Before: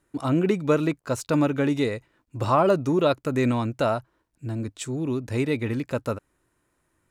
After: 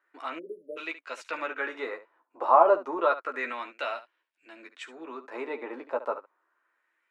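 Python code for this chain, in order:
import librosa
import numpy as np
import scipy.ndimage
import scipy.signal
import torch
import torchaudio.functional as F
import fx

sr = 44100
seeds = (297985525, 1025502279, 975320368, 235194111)

p1 = scipy.signal.sosfilt(scipy.signal.butter(4, 310.0, 'highpass', fs=sr, output='sos'), x)
p2 = fx.high_shelf(p1, sr, hz=4700.0, db=-8.5)
p3 = p2 + fx.room_early_taps(p2, sr, ms=(12, 71), db=(-5.0, -13.5), dry=0)
p4 = fx.spec_erase(p3, sr, start_s=0.39, length_s=0.38, low_hz=620.0, high_hz=9500.0)
p5 = fx.filter_lfo_bandpass(p4, sr, shape='sine', hz=0.3, low_hz=860.0, high_hz=2700.0, q=2.0)
y = p5 * 10.0 ** (4.5 / 20.0)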